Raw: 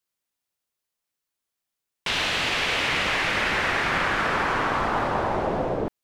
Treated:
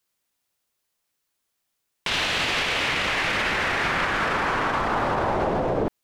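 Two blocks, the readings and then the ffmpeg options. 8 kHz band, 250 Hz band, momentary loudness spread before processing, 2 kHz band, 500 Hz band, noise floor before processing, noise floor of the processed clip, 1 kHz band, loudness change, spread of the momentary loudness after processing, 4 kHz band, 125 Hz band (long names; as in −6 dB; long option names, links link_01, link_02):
+0.5 dB, +1.0 dB, 4 LU, 0.0 dB, +1.0 dB, −85 dBFS, −78 dBFS, +0.5 dB, +0.5 dB, 2 LU, +0.5 dB, +1.0 dB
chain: -af "alimiter=limit=-22.5dB:level=0:latency=1:release=53,volume=7dB"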